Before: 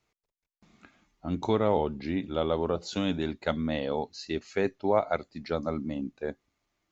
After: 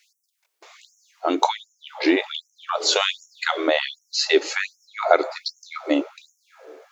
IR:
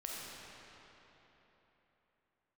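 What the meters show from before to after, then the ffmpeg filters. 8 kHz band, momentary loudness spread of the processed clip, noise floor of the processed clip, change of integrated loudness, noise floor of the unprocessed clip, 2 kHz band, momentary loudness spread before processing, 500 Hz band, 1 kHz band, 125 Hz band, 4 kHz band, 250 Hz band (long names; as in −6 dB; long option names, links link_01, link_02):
can't be measured, 12 LU, −76 dBFS, +7.5 dB, below −85 dBFS, +14.0 dB, 9 LU, +4.5 dB, +8.5 dB, below −30 dB, +16.5 dB, +4.0 dB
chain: -filter_complex "[0:a]asplit=2[link_01][link_02];[1:a]atrim=start_sample=2205,adelay=37[link_03];[link_02][link_03]afir=irnorm=-1:irlink=0,volume=-22.5dB[link_04];[link_01][link_04]amix=inputs=2:normalize=0,alimiter=level_in=20.5dB:limit=-1dB:release=50:level=0:latency=1,afftfilt=real='re*gte(b*sr/1024,270*pow(5500/270,0.5+0.5*sin(2*PI*1.3*pts/sr)))':imag='im*gte(b*sr/1024,270*pow(5500/270,0.5+0.5*sin(2*PI*1.3*pts/sr)))':win_size=1024:overlap=0.75,volume=-1dB"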